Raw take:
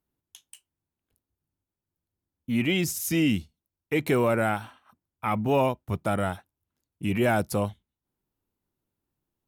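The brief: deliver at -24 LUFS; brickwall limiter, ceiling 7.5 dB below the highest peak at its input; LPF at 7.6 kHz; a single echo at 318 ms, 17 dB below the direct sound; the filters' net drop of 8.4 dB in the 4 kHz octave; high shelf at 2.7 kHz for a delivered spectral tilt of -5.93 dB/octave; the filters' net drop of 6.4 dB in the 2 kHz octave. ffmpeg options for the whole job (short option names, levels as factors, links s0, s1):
-af "lowpass=7600,equalizer=f=2000:t=o:g=-5,highshelf=f=2700:g=-5,equalizer=f=4000:t=o:g=-5.5,alimiter=limit=0.0891:level=0:latency=1,aecho=1:1:318:0.141,volume=2.51"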